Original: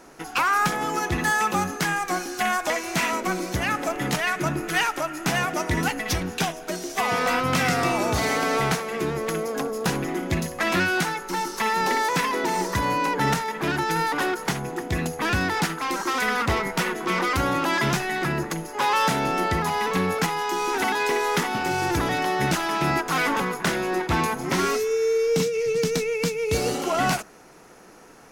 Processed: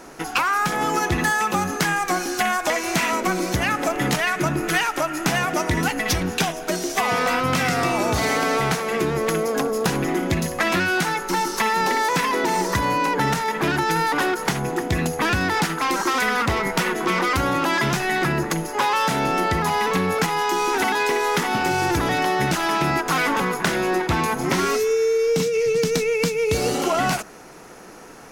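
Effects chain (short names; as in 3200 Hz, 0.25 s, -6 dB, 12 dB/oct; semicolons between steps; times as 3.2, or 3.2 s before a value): compressor, threshold -24 dBFS, peak gain reduction 7 dB; gain +6.5 dB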